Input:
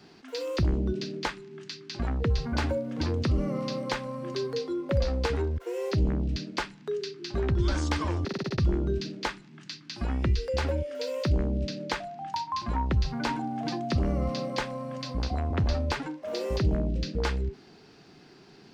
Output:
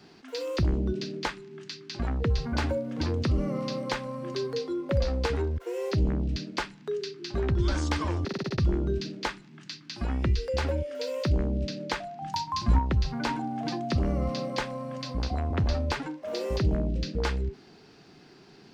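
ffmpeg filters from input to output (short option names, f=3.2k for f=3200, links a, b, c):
-filter_complex "[0:a]asettb=1/sr,asplit=3[a][b][c];[a]atrim=end=12.224[d];[b]atrim=start=12.22:end=12.79,asetpts=PTS-STARTPTS,afade=t=in:d=0.004:c=qsin,afade=t=out:st=0.566:d=0.004:c=qsin,bass=f=250:g=10,treble=f=4k:g=7[e];[c]atrim=start=12.786[f];[d][e]acrossfade=d=0.004:c1=hsin:c2=qsin[g];[g][f]acrossfade=d=0.004:c1=qsin:c2=hsin"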